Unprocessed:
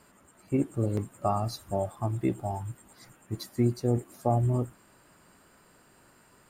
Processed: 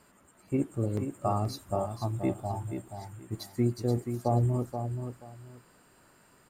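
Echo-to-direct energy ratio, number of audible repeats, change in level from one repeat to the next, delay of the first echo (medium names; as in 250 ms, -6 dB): -7.5 dB, 2, -13.5 dB, 479 ms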